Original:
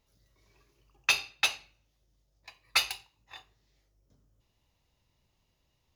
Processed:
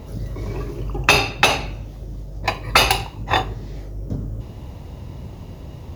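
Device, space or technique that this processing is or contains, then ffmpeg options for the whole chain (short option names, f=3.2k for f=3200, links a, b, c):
mastering chain: -af "highpass=51,equalizer=f=4.5k:t=o:w=2.5:g=-3,acompressor=threshold=-40dB:ratio=2,tiltshelf=f=940:g=9,asoftclip=type=hard:threshold=-28.5dB,alimiter=level_in=35.5dB:limit=-1dB:release=50:level=0:latency=1,volume=-1dB"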